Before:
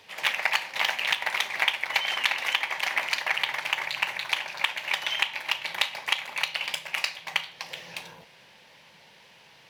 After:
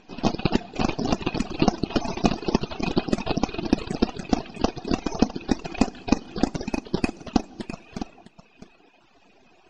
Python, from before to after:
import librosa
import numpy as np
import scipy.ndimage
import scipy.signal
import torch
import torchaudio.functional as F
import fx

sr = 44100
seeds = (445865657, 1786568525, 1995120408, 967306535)

p1 = np.abs(x)
p2 = fx.spec_gate(p1, sr, threshold_db=-30, keep='strong')
p3 = fx.high_shelf(p2, sr, hz=11000.0, db=-11.0)
p4 = fx.small_body(p3, sr, hz=(240.0, 350.0, 680.0, 2500.0), ring_ms=20, db=16)
p5 = p4 + fx.echo_single(p4, sr, ms=656, db=-11.0, dry=0)
p6 = fx.rev_gated(p5, sr, seeds[0], gate_ms=260, shape='flat', drr_db=10.5)
p7 = fx.dereverb_blind(p6, sr, rt60_s=1.3)
y = p7 * librosa.db_to_amplitude(-3.0)